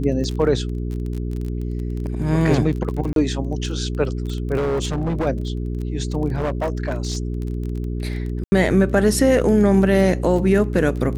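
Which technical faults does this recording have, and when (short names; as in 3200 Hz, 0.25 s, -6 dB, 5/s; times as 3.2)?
crackle 21/s -27 dBFS
hum 60 Hz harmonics 7 -25 dBFS
3.13–3.16 gap 32 ms
4.57–5.27 clipped -18 dBFS
6.33–7.17 clipped -18 dBFS
8.44–8.52 gap 80 ms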